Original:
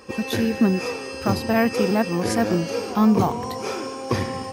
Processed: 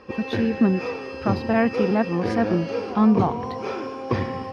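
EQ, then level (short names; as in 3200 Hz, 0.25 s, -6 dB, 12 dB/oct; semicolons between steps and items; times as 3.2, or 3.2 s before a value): air absorption 96 m; high shelf 5100 Hz -4.5 dB; bell 7600 Hz -12.5 dB 0.61 oct; 0.0 dB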